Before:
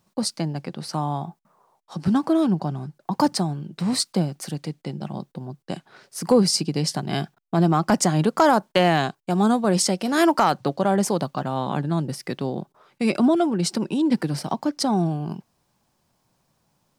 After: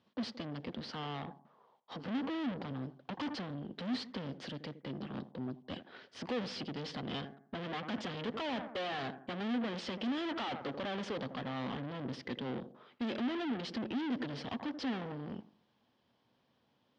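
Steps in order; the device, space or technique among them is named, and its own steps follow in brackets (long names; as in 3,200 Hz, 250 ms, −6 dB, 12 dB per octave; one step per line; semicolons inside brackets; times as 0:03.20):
analogue delay pedal into a guitar amplifier (bucket-brigade delay 83 ms, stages 1,024, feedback 37%, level −19 dB; tube saturation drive 35 dB, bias 0.65; loudspeaker in its box 90–4,500 Hz, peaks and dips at 160 Hz −7 dB, 250 Hz +8 dB, 470 Hz +6 dB, 1,800 Hz +4 dB, 3,200 Hz +9 dB)
level −3 dB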